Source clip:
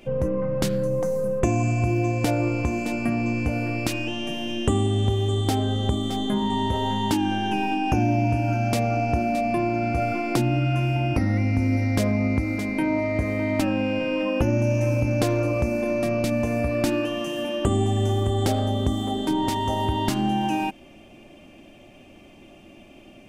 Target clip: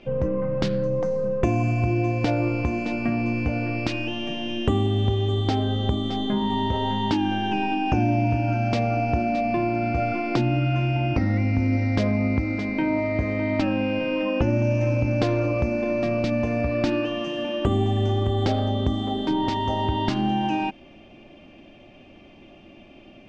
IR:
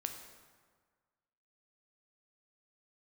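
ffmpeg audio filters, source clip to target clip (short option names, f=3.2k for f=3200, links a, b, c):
-af "lowpass=f=5k:w=0.5412,lowpass=f=5k:w=1.3066"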